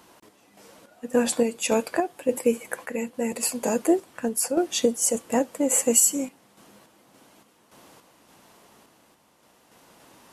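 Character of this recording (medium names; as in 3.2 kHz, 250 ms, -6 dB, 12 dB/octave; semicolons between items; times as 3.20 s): random-step tremolo, depth 70%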